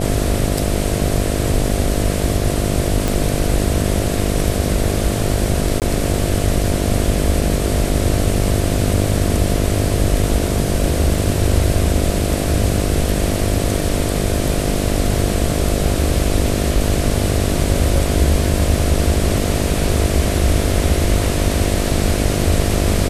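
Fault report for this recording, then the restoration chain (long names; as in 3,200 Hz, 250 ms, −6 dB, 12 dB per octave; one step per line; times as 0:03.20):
mains buzz 50 Hz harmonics 14 −21 dBFS
0:03.08: click
0:05.80–0:05.82: drop-out 18 ms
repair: click removal
hum removal 50 Hz, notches 14
repair the gap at 0:05.80, 18 ms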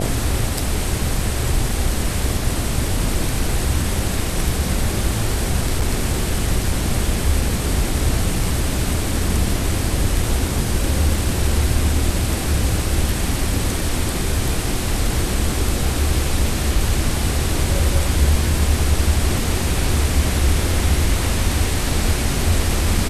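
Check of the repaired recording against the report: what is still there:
none of them is left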